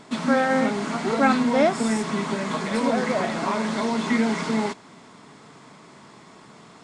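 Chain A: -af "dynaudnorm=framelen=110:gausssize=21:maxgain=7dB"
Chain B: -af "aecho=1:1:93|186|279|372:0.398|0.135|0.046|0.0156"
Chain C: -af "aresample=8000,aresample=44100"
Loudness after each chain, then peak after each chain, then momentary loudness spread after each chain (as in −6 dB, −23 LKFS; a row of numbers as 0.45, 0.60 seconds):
−18.5, −22.5, −23.0 LKFS; −3.0, −7.0, −7.5 dBFS; 7, 6, 7 LU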